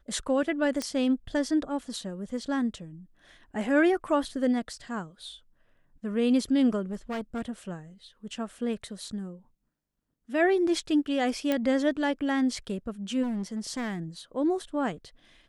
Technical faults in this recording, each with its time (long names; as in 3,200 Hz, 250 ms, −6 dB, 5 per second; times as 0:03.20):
0:00.82: click −17 dBFS
0:06.91–0:07.42: clipping −29 dBFS
0:11.52: click −14 dBFS
0:13.22–0:14.00: clipping −28 dBFS